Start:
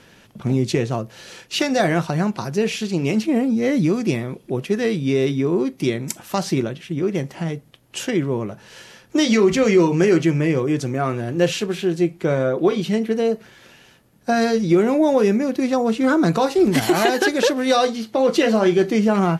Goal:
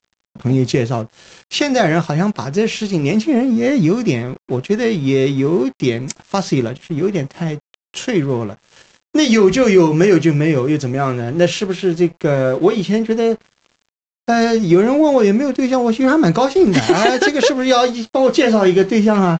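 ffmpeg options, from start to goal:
ffmpeg -i in.wav -af "lowshelf=frequency=68:gain=5,aresample=16000,aeval=exprs='sgn(val(0))*max(abs(val(0))-0.00841,0)':channel_layout=same,aresample=44100,volume=4.5dB" out.wav

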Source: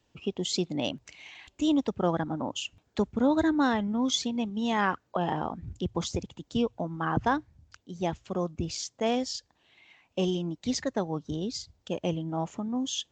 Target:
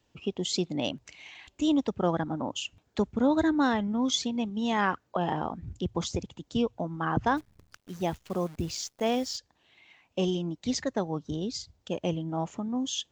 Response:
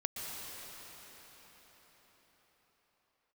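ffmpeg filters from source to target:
-filter_complex "[0:a]asplit=3[link_01][link_02][link_03];[link_01]afade=type=out:start_time=7.36:duration=0.02[link_04];[link_02]acrusher=bits=9:dc=4:mix=0:aa=0.000001,afade=type=in:start_time=7.36:duration=0.02,afade=type=out:start_time=9.36:duration=0.02[link_05];[link_03]afade=type=in:start_time=9.36:duration=0.02[link_06];[link_04][link_05][link_06]amix=inputs=3:normalize=0"

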